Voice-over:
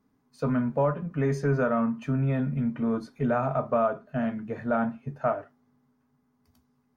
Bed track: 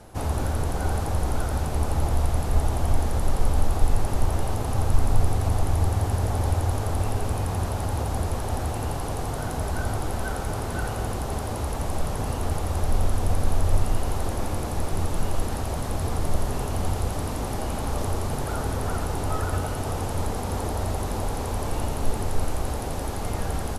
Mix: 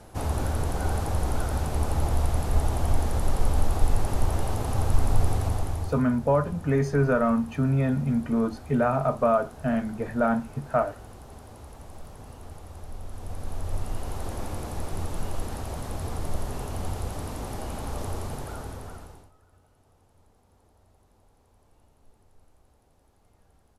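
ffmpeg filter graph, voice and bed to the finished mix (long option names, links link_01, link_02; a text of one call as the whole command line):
ffmpeg -i stem1.wav -i stem2.wav -filter_complex "[0:a]adelay=5500,volume=2.5dB[link_01];[1:a]volume=9.5dB,afade=type=out:start_time=5.34:duration=0.71:silence=0.177828,afade=type=in:start_time=13.04:duration=1.32:silence=0.281838,afade=type=out:start_time=18.21:duration=1.1:silence=0.0354813[link_02];[link_01][link_02]amix=inputs=2:normalize=0" out.wav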